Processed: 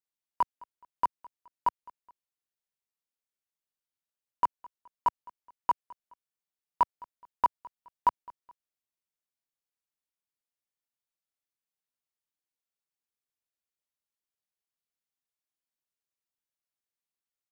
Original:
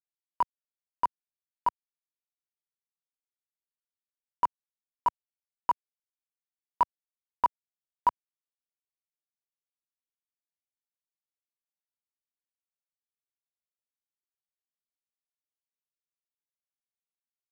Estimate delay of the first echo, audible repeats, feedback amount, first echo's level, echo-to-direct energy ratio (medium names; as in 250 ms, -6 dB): 211 ms, 2, 37%, -23.0 dB, -22.5 dB